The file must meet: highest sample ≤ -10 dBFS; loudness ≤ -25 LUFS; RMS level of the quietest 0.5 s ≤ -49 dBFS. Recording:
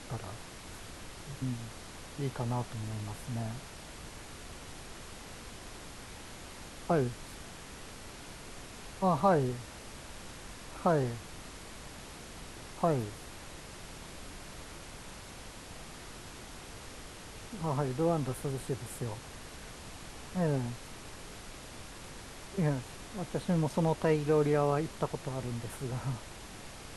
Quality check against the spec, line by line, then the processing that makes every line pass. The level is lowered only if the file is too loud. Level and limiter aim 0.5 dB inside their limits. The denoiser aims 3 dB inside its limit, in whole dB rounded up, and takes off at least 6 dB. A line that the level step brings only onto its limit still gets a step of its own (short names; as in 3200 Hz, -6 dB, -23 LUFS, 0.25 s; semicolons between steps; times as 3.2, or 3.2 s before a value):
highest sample -14.5 dBFS: OK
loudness -36.0 LUFS: OK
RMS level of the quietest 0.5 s -47 dBFS: fail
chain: denoiser 6 dB, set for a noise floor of -47 dBFS